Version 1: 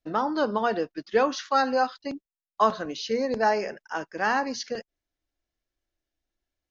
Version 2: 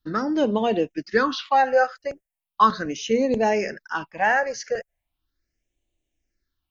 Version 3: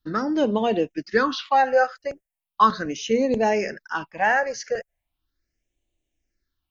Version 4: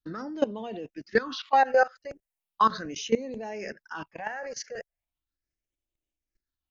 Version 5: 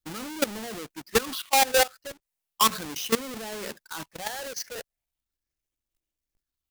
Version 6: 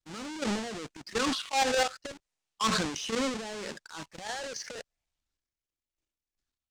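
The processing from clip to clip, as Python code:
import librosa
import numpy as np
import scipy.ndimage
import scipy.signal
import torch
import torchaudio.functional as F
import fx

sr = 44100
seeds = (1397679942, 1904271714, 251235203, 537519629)

y1 = fx.phaser_stages(x, sr, stages=6, low_hz=250.0, high_hz=1400.0, hz=0.38, feedback_pct=25)
y1 = F.gain(torch.from_numpy(y1), 7.0).numpy()
y2 = y1
y3 = fx.level_steps(y2, sr, step_db=18)
y4 = fx.halfwave_hold(y3, sr)
y4 = fx.high_shelf(y4, sr, hz=3000.0, db=7.5)
y4 = F.gain(torch.from_numpy(y4), -5.0).numpy()
y5 = scipy.signal.sosfilt(scipy.signal.butter(4, 8000.0, 'lowpass', fs=sr, output='sos'), y4)
y5 = fx.transient(y5, sr, attack_db=-8, sustain_db=11)
y5 = fx.leveller(y5, sr, passes=1)
y5 = F.gain(torch.from_numpy(y5), -6.0).numpy()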